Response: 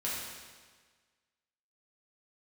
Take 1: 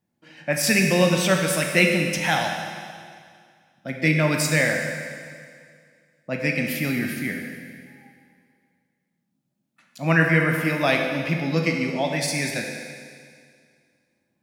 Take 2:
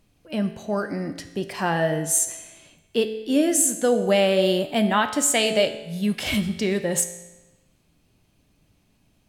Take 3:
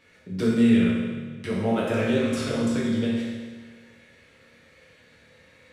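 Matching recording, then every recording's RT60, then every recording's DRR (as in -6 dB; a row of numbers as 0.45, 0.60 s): 3; 2.1, 1.1, 1.5 s; 1.5, 8.0, -7.5 dB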